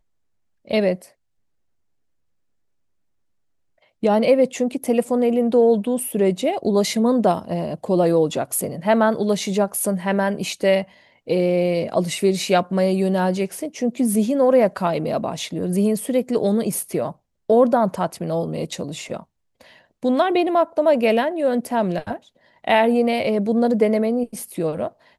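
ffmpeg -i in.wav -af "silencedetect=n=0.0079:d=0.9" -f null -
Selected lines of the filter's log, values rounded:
silence_start: 1.08
silence_end: 4.03 | silence_duration: 2.94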